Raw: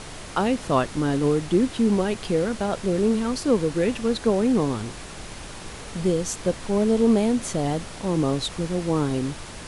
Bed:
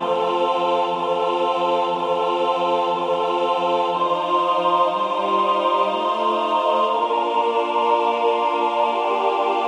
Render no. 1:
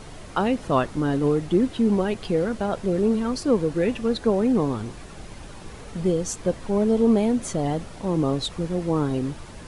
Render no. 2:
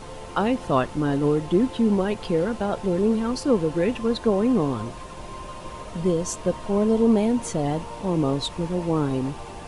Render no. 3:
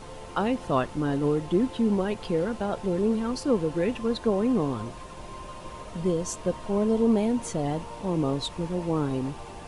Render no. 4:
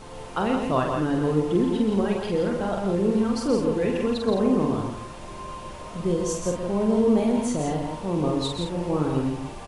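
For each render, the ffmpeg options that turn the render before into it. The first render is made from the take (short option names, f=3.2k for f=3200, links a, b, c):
-af "afftdn=nr=8:nf=-38"
-filter_complex "[1:a]volume=-21dB[a];[0:a][a]amix=inputs=2:normalize=0"
-af "volume=-3.5dB"
-af "aecho=1:1:46|127|168|213:0.596|0.398|0.531|0.266"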